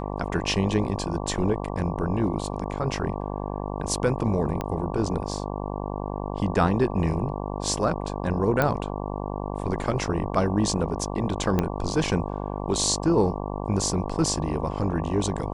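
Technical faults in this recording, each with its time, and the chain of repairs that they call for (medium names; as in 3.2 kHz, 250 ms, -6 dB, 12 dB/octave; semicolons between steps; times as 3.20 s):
buzz 50 Hz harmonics 23 -31 dBFS
4.61 s: pop -15 dBFS
8.62 s: pop -9 dBFS
11.59 s: pop -10 dBFS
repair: de-click; de-hum 50 Hz, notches 23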